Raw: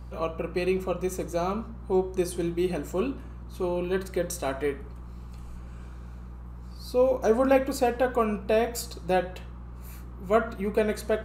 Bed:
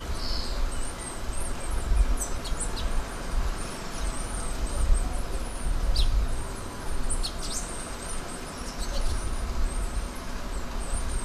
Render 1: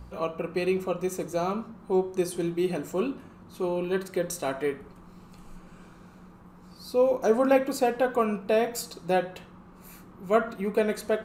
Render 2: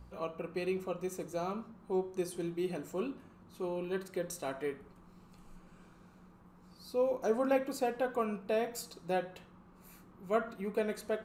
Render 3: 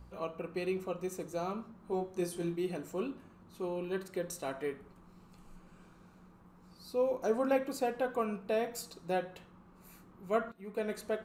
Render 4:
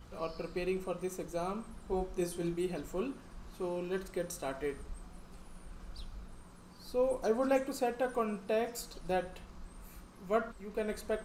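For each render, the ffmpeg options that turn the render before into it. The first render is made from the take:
-af "bandreject=f=60:t=h:w=4,bandreject=f=120:t=h:w=4"
-af "volume=-8.5dB"
-filter_complex "[0:a]asettb=1/sr,asplit=3[a][b][c];[a]atrim=end=1.834[d];[b]atrim=start=1.83:end=2.56,asetpts=PTS-STARTPTS,afade=t=in:d=0.004:c=qsin,afade=t=out:st=0.726:d=0.004:c=qsin,asplit=2[e][f];[f]adelay=23,volume=-4dB[g];[e][g]amix=inputs=2:normalize=0,atrim=end_sample=32193[h];[c]atrim=start=2.556[i];[d][h]acrossfade=d=0.004:c1=hsin:c2=qsin[j];[j][i]acrossfade=d=0.004:c1=qsin:c2=hsin,asplit=2[k][l];[k]atrim=end=10.52,asetpts=PTS-STARTPTS,afade=t=out:st=10.516:d=0.004:c=hsin:silence=0.112202[m];[l]atrim=start=10.52,asetpts=PTS-STARTPTS,afade=t=in:d=0.41:silence=0.112202[n];[m][n]concat=n=2:v=0:a=1"
-filter_complex "[1:a]volume=-22.5dB[a];[0:a][a]amix=inputs=2:normalize=0"

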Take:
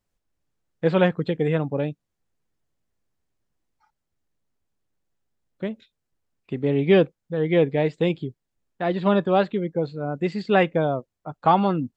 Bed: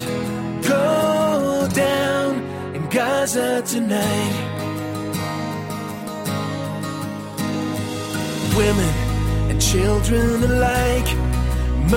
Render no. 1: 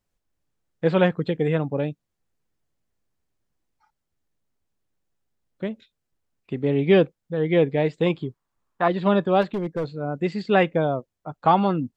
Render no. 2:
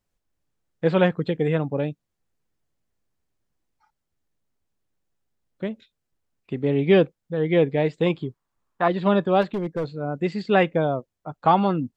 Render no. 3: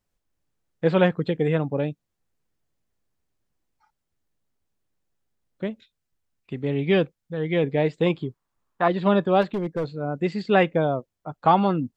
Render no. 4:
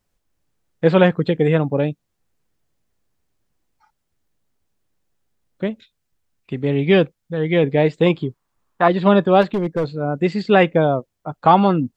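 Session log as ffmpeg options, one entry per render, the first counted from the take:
-filter_complex "[0:a]asettb=1/sr,asplit=3[a][b][c];[a]atrim=end=8.064[d];[b]atrim=start=8.06:end=8.88,asetpts=PTS-STARTPTS,afade=t=in:d=0.004:c=qsin,afade=t=out:st=0.816:d=0.004:c=qsin,equalizer=f=1.1k:w=1.7:g=15[e];[c]atrim=start=8.876[f];[d][e]acrossfade=d=0.004:c1=hsin:c2=qsin[g];[g][f]acrossfade=d=0.004:c1=qsin:c2=hsin,asplit=3[h][i][j];[h]afade=t=out:st=9.41:d=0.02[k];[i]asoftclip=type=hard:threshold=-22dB,afade=t=in:st=9.41:d=0.02,afade=t=out:st=9.88:d=0.02[l];[j]afade=t=in:st=9.88:d=0.02[m];[k][l][m]amix=inputs=3:normalize=0"
-af anull
-filter_complex "[0:a]asettb=1/sr,asplit=3[a][b][c];[a]atrim=end=5.704[d];[b]atrim=start=5.7:end=7.64,asetpts=PTS-STARTPTS,afade=t=in:d=0.004:c=qsin,afade=t=out:st=1.936:d=0.004:c=qsin,equalizer=f=430:t=o:w=2.6:g=-4.5[e];[c]atrim=start=7.636[f];[d][e]acrossfade=d=0.004:c1=hsin:c2=qsin[g];[g][f]acrossfade=d=0.004:c1=qsin:c2=hsin"
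-af "volume=6dB,alimiter=limit=-1dB:level=0:latency=1"

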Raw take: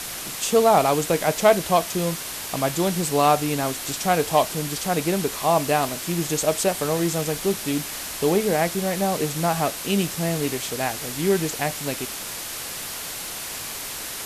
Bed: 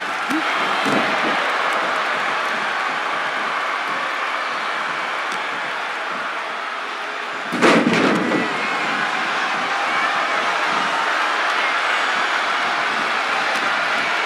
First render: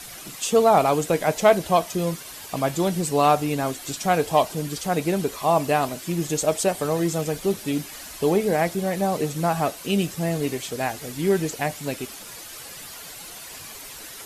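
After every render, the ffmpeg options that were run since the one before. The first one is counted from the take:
-af "afftdn=nr=10:nf=-33"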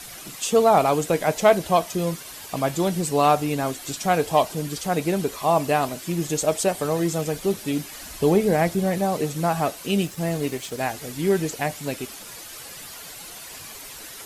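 -filter_complex "[0:a]asettb=1/sr,asplit=3[a][b][c];[a]atrim=end=8.014[d];[b]atrim=start=8.01:end=8.98,asetpts=PTS-STARTPTS,afade=t=in:d=0.004:c=qsin,afade=t=out:st=0.966:d=0.004:c=qsin,lowshelf=f=220:g=7[e];[c]atrim=start=8.976[f];[d][e]acrossfade=d=0.004:c1=hsin:c2=qsin[g];[g][f]acrossfade=d=0.004:c1=qsin:c2=hsin,asettb=1/sr,asplit=3[h][i][j];[h]atrim=end=10.034[k];[i]atrim=start=10.03:end=10.79,asetpts=PTS-STARTPTS,afade=t=in:d=0.004:c=qsin,afade=t=out:st=0.756:d=0.004:c=qsin,aeval=exprs='sgn(val(0))*max(abs(val(0))-0.00501,0)':c=same[l];[j]atrim=start=10.786[m];[k][l]acrossfade=d=0.004:c1=hsin:c2=qsin[n];[n][m]acrossfade=d=0.004:c1=qsin:c2=hsin"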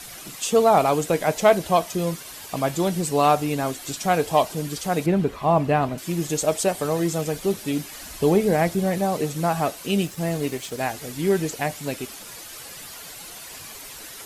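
-filter_complex "[0:a]asettb=1/sr,asplit=3[a][b][c];[a]atrim=end=5.064[d];[b]atrim=start=5.06:end=5.98,asetpts=PTS-STARTPTS,afade=t=in:d=0.004:c=qsin,afade=t=out:st=0.916:d=0.004:c=qsin,bass=f=250:g=7,treble=f=4k:g=-15[e];[c]atrim=start=5.976[f];[d][e]acrossfade=d=0.004:c1=hsin:c2=qsin[g];[g][f]acrossfade=d=0.004:c1=qsin:c2=hsin"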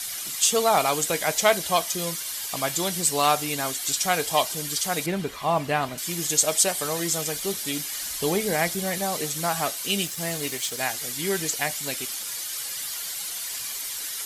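-af "tiltshelf=f=1.3k:g=-8.5,bandreject=f=2.6k:w=15"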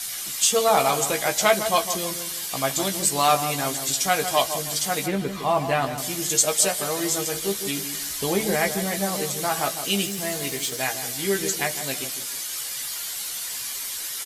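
-filter_complex "[0:a]asplit=2[a][b];[b]adelay=15,volume=-5.5dB[c];[a][c]amix=inputs=2:normalize=0,asplit=2[d][e];[e]adelay=157,lowpass=f=1.2k:p=1,volume=-8dB,asplit=2[f][g];[g]adelay=157,lowpass=f=1.2k:p=1,volume=0.39,asplit=2[h][i];[i]adelay=157,lowpass=f=1.2k:p=1,volume=0.39,asplit=2[j][k];[k]adelay=157,lowpass=f=1.2k:p=1,volume=0.39[l];[d][f][h][j][l]amix=inputs=5:normalize=0"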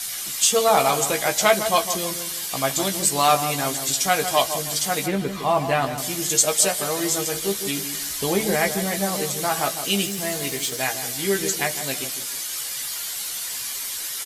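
-af "volume=1.5dB"

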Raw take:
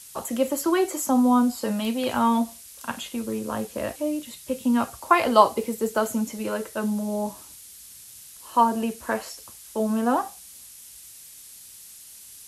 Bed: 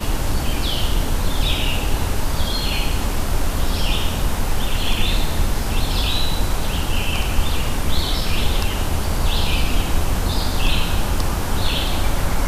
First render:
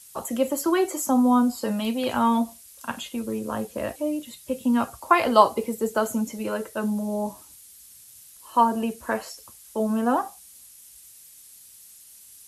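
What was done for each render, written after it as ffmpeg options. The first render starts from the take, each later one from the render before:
-af "afftdn=nr=6:nf=-46"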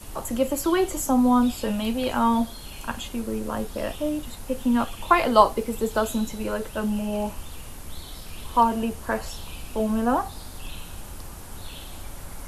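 -filter_complex "[1:a]volume=-19dB[a];[0:a][a]amix=inputs=2:normalize=0"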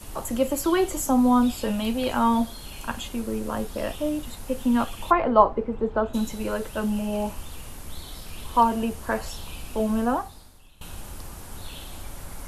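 -filter_complex "[0:a]asplit=3[a][b][c];[a]afade=t=out:st=5.1:d=0.02[d];[b]lowpass=1.4k,afade=t=in:st=5.1:d=0.02,afade=t=out:st=6.13:d=0.02[e];[c]afade=t=in:st=6.13:d=0.02[f];[d][e][f]amix=inputs=3:normalize=0,asplit=2[g][h];[g]atrim=end=10.81,asetpts=PTS-STARTPTS,afade=t=out:st=10.02:d=0.79:c=qua:silence=0.105925[i];[h]atrim=start=10.81,asetpts=PTS-STARTPTS,afade=t=in:d=0.004:c=hsin:silence=0.105925[j];[i][j]concat=n=2:v=0:a=1"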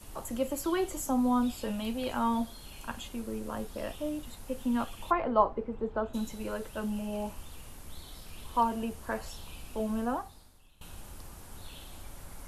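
-af "volume=-8dB"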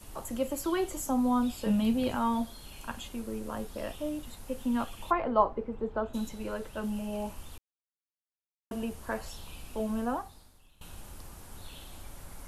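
-filter_complex "[0:a]asettb=1/sr,asplit=3[a][b][c];[a]atrim=end=1.664[d];[b]atrim=start=1.66:end=2.16,asetpts=PTS-STARTPTS,afade=t=in:d=0.004:c=qsin,afade=t=out:st=0.496:d=0.004:c=qsin,equalizer=f=160:w=0.71:g=10.5[e];[c]atrim=start=2.156[f];[d][e]acrossfade=d=0.004:c1=hsin:c2=qsin[g];[g][f]acrossfade=d=0.004:c1=qsin:c2=hsin,asettb=1/sr,asplit=3[h][i][j];[h]atrim=end=6.294[k];[i]atrim=start=6.29:end=6.84,asetpts=PTS-STARTPTS,afade=t=in:d=0.004:c=qsin,afade=t=out:st=0.546:d=0.004:c=qsin,highshelf=f=7k:g=-5.5[l];[j]atrim=start=6.836[m];[k][l]acrossfade=d=0.004:c1=hsin:c2=qsin[n];[n][m]acrossfade=d=0.004:c1=qsin:c2=hsin,asplit=3[o][p][q];[o]atrim=end=7.58,asetpts=PTS-STARTPTS,afade=t=out:st=7.576:d=0.004:c=hsin[r];[p]atrim=start=7.58:end=8.71,asetpts=PTS-STARTPTS,volume=0[s];[q]atrim=start=8.71,asetpts=PTS-STARTPTS,afade=t=in:d=0.004:c=hsin[t];[r][s][t]concat=n=3:v=0:a=1"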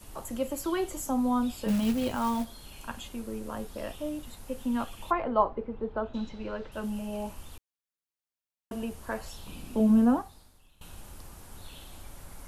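-filter_complex "[0:a]asettb=1/sr,asplit=3[a][b][c];[a]atrim=end=1.684[d];[b]atrim=start=1.68:end=2.45,asetpts=PTS-STARTPTS,afade=t=in:d=0.004:c=qsin,afade=t=out:st=0.766:d=0.004:c=qsin,acrusher=bits=4:mode=log:mix=0:aa=0.000001[e];[c]atrim=start=2.446[f];[d][e]acrossfade=d=0.004:c1=hsin:c2=qsin[g];[g][f]acrossfade=d=0.004:c1=qsin:c2=hsin,asettb=1/sr,asplit=3[h][i][j];[h]atrim=end=5.234[k];[i]atrim=start=5.23:end=6.72,asetpts=PTS-STARTPTS,afade=t=in:d=0.004:c=qsin,afade=t=out:st=1.486:d=0.004:c=qsin,lowpass=f=4.8k:w=0.5412,lowpass=f=4.8k:w=1.3066[l];[j]atrim=start=6.716[m];[k][l]acrossfade=d=0.004:c1=hsin:c2=qsin[n];[n][m]acrossfade=d=0.004:c1=qsin:c2=hsin,asettb=1/sr,asplit=3[o][p][q];[o]atrim=end=9.464[r];[p]atrim=start=9.46:end=10.22,asetpts=PTS-STARTPTS,afade=t=in:d=0.004:c=qsin,afade=t=out:st=0.756:d=0.004:c=qsin,equalizer=f=230:t=o:w=1.4:g=12.5[s];[q]atrim=start=10.216[t];[r][s]acrossfade=d=0.004:c1=hsin:c2=qsin[u];[u][t]acrossfade=d=0.004:c1=qsin:c2=hsin"

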